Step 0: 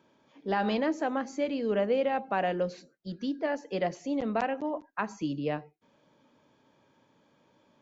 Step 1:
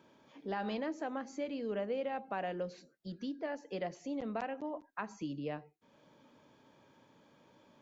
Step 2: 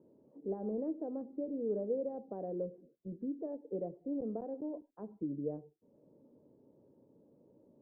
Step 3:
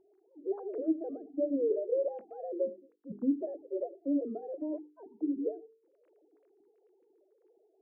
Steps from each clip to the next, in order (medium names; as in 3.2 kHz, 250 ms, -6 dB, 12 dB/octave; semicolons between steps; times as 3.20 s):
compression 1.5:1, threshold -55 dBFS, peak gain reduction 11.5 dB; trim +1.5 dB
four-pole ladder low-pass 550 Hz, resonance 40%; trim +7 dB
formants replaced by sine waves; hum notches 50/100/150/200/250/300/350/400/450 Hz; trim +5.5 dB